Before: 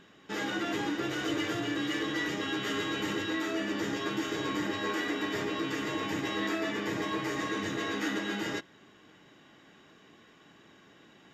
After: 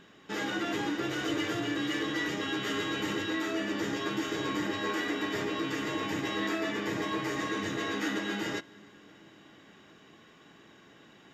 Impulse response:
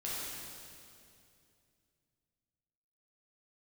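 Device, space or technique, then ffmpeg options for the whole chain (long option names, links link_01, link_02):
ducked reverb: -filter_complex "[0:a]asplit=3[link_01][link_02][link_03];[1:a]atrim=start_sample=2205[link_04];[link_02][link_04]afir=irnorm=-1:irlink=0[link_05];[link_03]apad=whole_len=499915[link_06];[link_05][link_06]sidechaincompress=threshold=-43dB:ratio=8:attack=16:release=901,volume=-12.5dB[link_07];[link_01][link_07]amix=inputs=2:normalize=0"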